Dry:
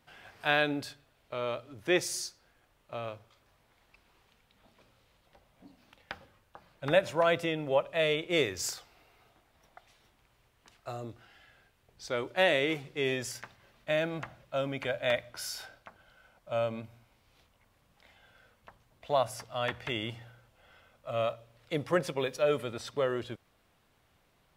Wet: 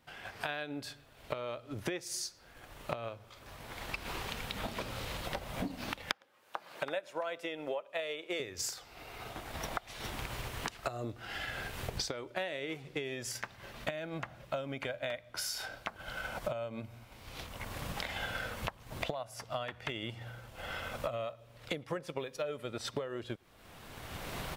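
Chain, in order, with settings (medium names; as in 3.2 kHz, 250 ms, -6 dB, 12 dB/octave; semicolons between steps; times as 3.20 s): recorder AGC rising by 22 dB/s; 6.13–8.40 s: high-pass 360 Hz 12 dB/octave; transient shaper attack +4 dB, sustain -3 dB; compression 4:1, threshold -36 dBFS, peak gain reduction 23.5 dB; speakerphone echo 110 ms, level -29 dB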